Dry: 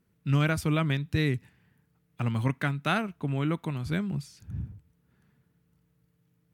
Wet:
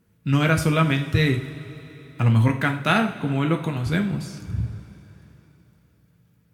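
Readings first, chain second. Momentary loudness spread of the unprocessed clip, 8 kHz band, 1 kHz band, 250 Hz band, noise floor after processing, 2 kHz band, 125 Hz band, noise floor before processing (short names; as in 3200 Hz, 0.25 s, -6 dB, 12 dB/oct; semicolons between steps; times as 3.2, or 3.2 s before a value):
13 LU, +7.5 dB, +8.0 dB, +7.0 dB, -61 dBFS, +8.0 dB, +7.0 dB, -71 dBFS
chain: two-slope reverb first 0.41 s, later 3.7 s, from -18 dB, DRR 3 dB; gain +6 dB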